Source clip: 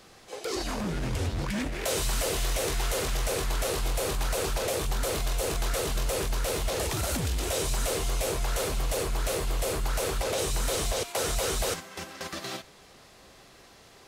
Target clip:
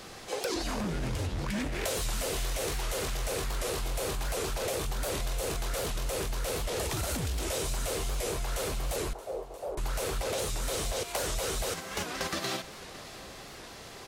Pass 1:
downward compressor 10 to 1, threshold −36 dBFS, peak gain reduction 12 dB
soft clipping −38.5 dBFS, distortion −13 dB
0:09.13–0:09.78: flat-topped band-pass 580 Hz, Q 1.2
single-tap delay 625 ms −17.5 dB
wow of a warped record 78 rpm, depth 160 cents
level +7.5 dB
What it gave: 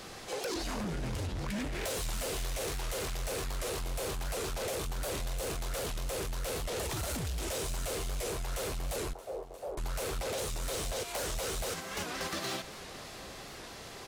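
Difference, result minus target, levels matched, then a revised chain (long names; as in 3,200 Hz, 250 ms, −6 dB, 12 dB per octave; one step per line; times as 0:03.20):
soft clipping: distortion +16 dB
downward compressor 10 to 1, threshold −36 dBFS, peak gain reduction 12 dB
soft clipping −27.5 dBFS, distortion −29 dB
0:09.13–0:09.78: flat-topped band-pass 580 Hz, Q 1.2
single-tap delay 625 ms −17.5 dB
wow of a warped record 78 rpm, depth 160 cents
level +7.5 dB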